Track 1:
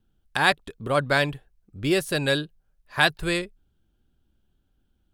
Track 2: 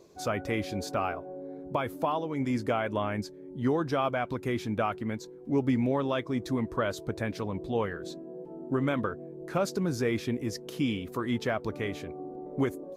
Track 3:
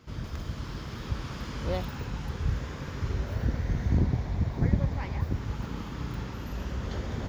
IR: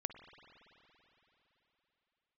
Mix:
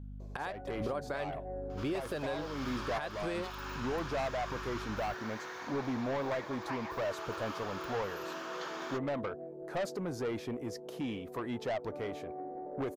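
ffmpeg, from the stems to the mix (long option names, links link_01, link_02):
-filter_complex "[0:a]equalizer=frequency=590:width=0.36:gain=14,acompressor=threshold=-16dB:ratio=6,aeval=exprs='val(0)+0.02*(sin(2*PI*50*n/s)+sin(2*PI*2*50*n/s)/2+sin(2*PI*3*50*n/s)/3+sin(2*PI*4*50*n/s)/4+sin(2*PI*5*50*n/s)/5)':channel_layout=same,volume=-9.5dB[link_01];[1:a]equalizer=frequency=690:width_type=o:width=1.4:gain=13.5,asoftclip=type=tanh:threshold=-22dB,adelay=200,volume=-8.5dB[link_02];[2:a]highpass=frequency=1100:width_type=q:width=1.8,bandreject=frequency=2000:width=11,adelay=1700,volume=0dB[link_03];[link_01][link_02][link_03]amix=inputs=3:normalize=0,alimiter=level_in=2.5dB:limit=-24dB:level=0:latency=1:release=357,volume=-2.5dB"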